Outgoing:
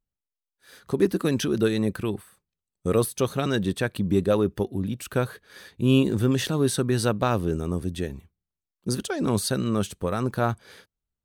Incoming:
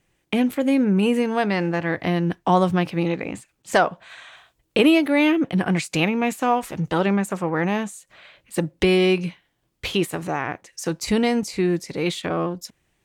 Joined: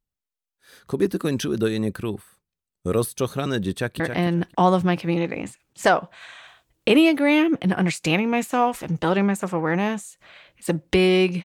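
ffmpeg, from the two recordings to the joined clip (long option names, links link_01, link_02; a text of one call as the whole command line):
ffmpeg -i cue0.wav -i cue1.wav -filter_complex "[0:a]apad=whole_dur=11.44,atrim=end=11.44,atrim=end=4.002[link_01];[1:a]atrim=start=1.888:end=9.33[link_02];[link_01][link_02]acrossfade=duration=0.004:curve1=hsin:curve2=hsin,asplit=2[link_03][link_04];[link_04]afade=type=in:start_time=3.7:duration=0.01,afade=type=out:start_time=4:duration=0.01,aecho=0:1:270|540|810:0.473151|0.0709727|0.0106459[link_05];[link_03][link_05]amix=inputs=2:normalize=0" out.wav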